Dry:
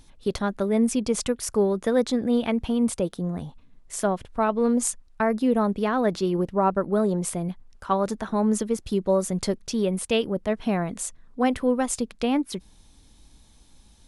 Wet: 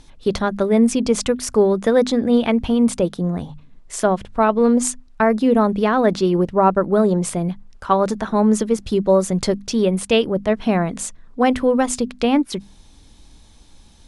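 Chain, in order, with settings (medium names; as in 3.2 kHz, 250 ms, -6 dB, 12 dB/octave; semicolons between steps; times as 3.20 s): Bessel low-pass 7.9 kHz, order 2; hum notches 50/100/150/200/250 Hz; trim +7 dB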